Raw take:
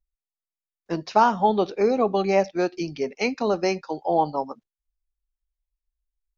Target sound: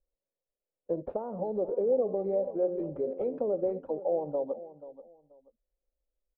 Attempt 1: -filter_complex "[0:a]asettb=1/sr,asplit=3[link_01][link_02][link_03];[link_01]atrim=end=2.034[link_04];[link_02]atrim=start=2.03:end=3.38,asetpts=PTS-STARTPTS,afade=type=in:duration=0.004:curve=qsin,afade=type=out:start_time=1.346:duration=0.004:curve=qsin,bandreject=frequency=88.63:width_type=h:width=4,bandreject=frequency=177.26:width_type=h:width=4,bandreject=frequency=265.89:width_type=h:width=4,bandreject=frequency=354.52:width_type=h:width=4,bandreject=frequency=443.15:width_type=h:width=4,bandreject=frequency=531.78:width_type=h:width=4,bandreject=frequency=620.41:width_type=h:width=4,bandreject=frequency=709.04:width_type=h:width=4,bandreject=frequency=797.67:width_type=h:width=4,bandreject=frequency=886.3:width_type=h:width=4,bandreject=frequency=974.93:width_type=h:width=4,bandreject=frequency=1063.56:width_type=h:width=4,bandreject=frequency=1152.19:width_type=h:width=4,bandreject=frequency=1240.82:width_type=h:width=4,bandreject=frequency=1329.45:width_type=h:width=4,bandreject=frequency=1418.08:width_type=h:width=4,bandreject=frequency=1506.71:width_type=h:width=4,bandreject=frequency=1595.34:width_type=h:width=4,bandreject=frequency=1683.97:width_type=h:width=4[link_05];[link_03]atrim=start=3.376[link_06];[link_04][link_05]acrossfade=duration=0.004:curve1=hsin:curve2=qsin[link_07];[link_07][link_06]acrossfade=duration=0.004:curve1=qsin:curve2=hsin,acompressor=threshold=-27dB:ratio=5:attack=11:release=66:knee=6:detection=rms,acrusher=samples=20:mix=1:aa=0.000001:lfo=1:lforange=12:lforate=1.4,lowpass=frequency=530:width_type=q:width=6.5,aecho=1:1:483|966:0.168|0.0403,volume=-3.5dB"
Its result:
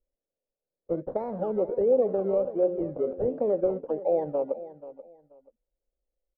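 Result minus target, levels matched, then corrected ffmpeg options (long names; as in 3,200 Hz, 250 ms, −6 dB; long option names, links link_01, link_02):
sample-and-hold swept by an LFO: distortion +8 dB; downward compressor: peak gain reduction −5 dB
-filter_complex "[0:a]asettb=1/sr,asplit=3[link_01][link_02][link_03];[link_01]atrim=end=2.034[link_04];[link_02]atrim=start=2.03:end=3.38,asetpts=PTS-STARTPTS,afade=type=in:duration=0.004:curve=qsin,afade=type=out:start_time=1.346:duration=0.004:curve=qsin,bandreject=frequency=88.63:width_type=h:width=4,bandreject=frequency=177.26:width_type=h:width=4,bandreject=frequency=265.89:width_type=h:width=4,bandreject=frequency=354.52:width_type=h:width=4,bandreject=frequency=443.15:width_type=h:width=4,bandreject=frequency=531.78:width_type=h:width=4,bandreject=frequency=620.41:width_type=h:width=4,bandreject=frequency=709.04:width_type=h:width=4,bandreject=frequency=797.67:width_type=h:width=4,bandreject=frequency=886.3:width_type=h:width=4,bandreject=frequency=974.93:width_type=h:width=4,bandreject=frequency=1063.56:width_type=h:width=4,bandreject=frequency=1152.19:width_type=h:width=4,bandreject=frequency=1240.82:width_type=h:width=4,bandreject=frequency=1329.45:width_type=h:width=4,bandreject=frequency=1418.08:width_type=h:width=4,bandreject=frequency=1506.71:width_type=h:width=4,bandreject=frequency=1595.34:width_type=h:width=4,bandreject=frequency=1683.97:width_type=h:width=4[link_05];[link_03]atrim=start=3.376[link_06];[link_04][link_05]acrossfade=duration=0.004:curve1=hsin:curve2=qsin[link_07];[link_07][link_06]acrossfade=duration=0.004:curve1=qsin:curve2=hsin,acompressor=threshold=-33dB:ratio=5:attack=11:release=66:knee=6:detection=rms,acrusher=samples=8:mix=1:aa=0.000001:lfo=1:lforange=4.8:lforate=1.4,lowpass=frequency=530:width_type=q:width=6.5,aecho=1:1:483|966:0.168|0.0403,volume=-3.5dB"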